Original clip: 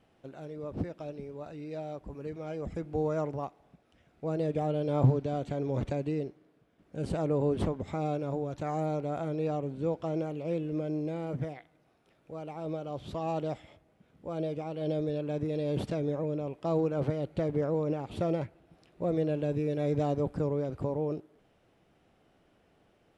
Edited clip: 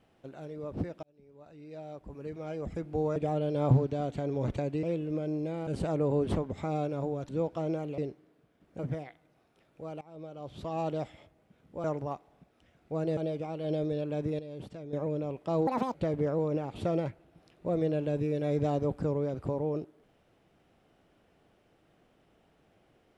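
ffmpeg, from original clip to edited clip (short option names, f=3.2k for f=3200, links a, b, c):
-filter_complex "[0:a]asplit=15[a][b][c][d][e][f][g][h][i][j][k][l][m][n][o];[a]atrim=end=1.03,asetpts=PTS-STARTPTS,afade=t=out:st=1.026:d=0.004:c=hsin[p];[b]atrim=start=1.03:end=3.162,asetpts=PTS-STARTPTS,afade=t=in:d=1.41[q];[c]atrim=start=4.488:end=6.162[r];[d]atrim=start=10.448:end=11.292[s];[e]atrim=start=6.968:end=8.592[t];[f]atrim=start=9.758:end=10.452[u];[g]atrim=start=6.158:end=6.972[v];[h]atrim=start=11.288:end=12.51,asetpts=PTS-STARTPTS,afade=t=out:st=1.218:d=0.004:c=hsin:silence=0.133352[w];[i]atrim=start=12.51:end=14.342,asetpts=PTS-STARTPTS,afade=t=in:d=0.82:silence=0.133352[x];[j]atrim=start=3.158:end=4.492[y];[k]atrim=start=14.338:end=15.562[z];[l]atrim=start=15.558:end=16.102,asetpts=PTS-STARTPTS,volume=-11.5dB[aa];[m]atrim=start=16.098:end=16.844[ab];[n]atrim=start=16.84:end=17.3,asetpts=PTS-STARTPTS,asetrate=74088,aresample=44100[ac];[o]atrim=start=17.296[ad];[p][q]concat=n=2:v=0:a=1[ae];[ae][r]acrossfade=d=0.004:c1=hsin:c2=hsin[af];[af][s]acrossfade=d=0.004:c1=hsin:c2=hsin[ag];[ag][t]acrossfade=d=0.004:c1=hsin:c2=hsin[ah];[ah][u]acrossfade=d=0.004:c1=hsin:c2=hsin[ai];[ai][v]acrossfade=d=0.004:c1=hsin:c2=hsin[aj];[w][x]concat=n=2:v=0:a=1[ak];[aj][ak]acrossfade=d=0.004:c1=hsin:c2=hsin[al];[al][y]acrossfade=d=0.004:c1=hsin:c2=hsin[am];[am][z]acrossfade=d=0.004:c1=hsin:c2=hsin[an];[an][aa]acrossfade=d=0.004:c1=hsin:c2=hsin[ao];[ao][ab]acrossfade=d=0.004:c1=hsin:c2=hsin[ap];[ap][ac]acrossfade=d=0.004:c1=hsin:c2=hsin[aq];[aq][ad]acrossfade=d=0.004:c1=hsin:c2=hsin"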